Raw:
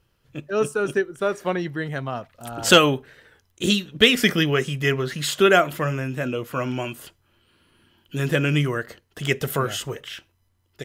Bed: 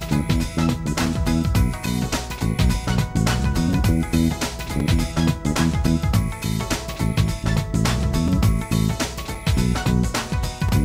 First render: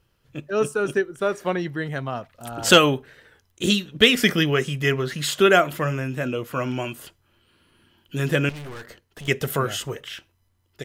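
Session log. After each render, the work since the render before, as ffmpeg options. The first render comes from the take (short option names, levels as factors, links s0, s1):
-filter_complex "[0:a]asettb=1/sr,asplit=3[s0][s1][s2];[s0]atrim=end=8.494[s3];[s1]atrim=start=8.49:end=9.28,asetpts=PTS-STARTPTS,afade=t=in:d=0.004:c=qsin,afade=t=out:st=0.786:d=0.004:c=qsin,aeval=exprs='(tanh(56.2*val(0)+0.35)-tanh(0.35))/56.2':c=same[s4];[s2]atrim=start=9.276[s5];[s3][s4]acrossfade=d=0.004:c1=hsin:c2=qsin[s6];[s6][s5]acrossfade=d=0.004:c1=qsin:c2=hsin"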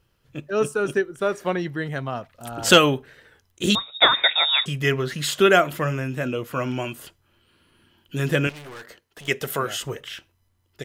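-filter_complex "[0:a]asettb=1/sr,asplit=3[s0][s1][s2];[s0]atrim=end=3.754[s3];[s1]atrim=start=3.75:end=4.66,asetpts=PTS-STARTPTS,afade=t=in:d=0.004:c=qsin,afade=t=out:st=0.906:d=0.004:c=qsin,lowpass=f=3300:t=q:w=0.5098,lowpass=f=3300:t=q:w=0.6013,lowpass=f=3300:t=q:w=0.9,lowpass=f=3300:t=q:w=2.563,afreqshift=-3900[s4];[s2]atrim=start=4.656[s5];[s3][s4]acrossfade=d=0.004:c1=hsin:c2=qsin[s6];[s6][s5]acrossfade=d=0.004:c1=qsin:c2=hsin,asettb=1/sr,asplit=3[s7][s8][s9];[s7]atrim=end=8.474[s10];[s8]atrim=start=8.47:end=9.83,asetpts=PTS-STARTPTS,afade=t=in:d=0.004:c=qsin,afade=t=out:st=1.356:d=0.004:c=qsin,lowshelf=f=200:g=-11[s11];[s9]atrim=start=9.826[s12];[s10][s11]acrossfade=d=0.004:c1=hsin:c2=qsin[s13];[s13][s12]acrossfade=d=0.004:c1=qsin:c2=hsin"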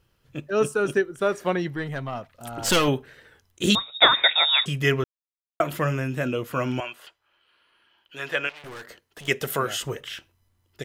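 -filter_complex "[0:a]asettb=1/sr,asplit=3[s0][s1][s2];[s0]atrim=end=1.744[s3];[s1]atrim=start=1.74:end=2.88,asetpts=PTS-STARTPTS,afade=t=in:d=0.004:c=qsin,afade=t=out:st=1.136:d=0.004:c=qsin,aeval=exprs='(tanh(6.31*val(0)+0.4)-tanh(0.4))/6.31':c=same[s4];[s2]atrim=start=2.876[s5];[s3][s4]acrossfade=d=0.004:c1=hsin:c2=qsin[s6];[s6][s5]acrossfade=d=0.004:c1=qsin:c2=hsin,asettb=1/sr,asplit=3[s7][s8][s9];[s7]atrim=end=6.804[s10];[s8]atrim=start=6.8:end=8.64,asetpts=PTS-STARTPTS,afade=t=in:d=0.004:c=qsin,afade=t=out:st=1.836:d=0.004:c=qsin,acrossover=split=530 4500:gain=0.0708 1 0.224[s11][s12][s13];[s11][s12][s13]amix=inputs=3:normalize=0[s14];[s9]atrim=start=8.636[s15];[s10][s14]acrossfade=d=0.004:c1=hsin:c2=qsin[s16];[s16][s15]acrossfade=d=0.004:c1=qsin:c2=hsin,asplit=3[s17][s18][s19];[s17]atrim=end=5.04,asetpts=PTS-STARTPTS,afade=t=out:st=5.036:d=0.004:c=hsin[s20];[s18]atrim=start=5.04:end=5.6,asetpts=PTS-STARTPTS,volume=0[s21];[s19]atrim=start=5.6,asetpts=PTS-STARTPTS,afade=t=in:d=0.004:c=hsin[s22];[s20][s21][s22]concat=n=3:v=0:a=1"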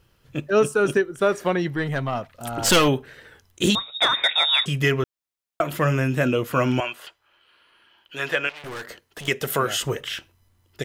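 -af "acontrast=39,alimiter=limit=0.316:level=0:latency=1:release=421"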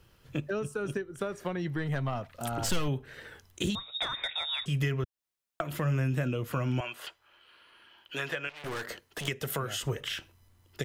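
-filter_complex "[0:a]acrossover=split=130[s0][s1];[s1]acompressor=threshold=0.0282:ratio=10[s2];[s0][s2]amix=inputs=2:normalize=0"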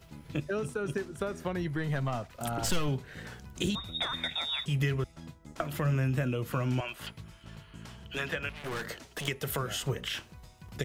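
-filter_complex "[1:a]volume=0.0422[s0];[0:a][s0]amix=inputs=2:normalize=0"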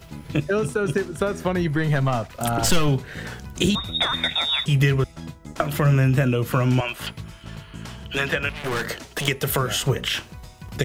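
-af "volume=3.35"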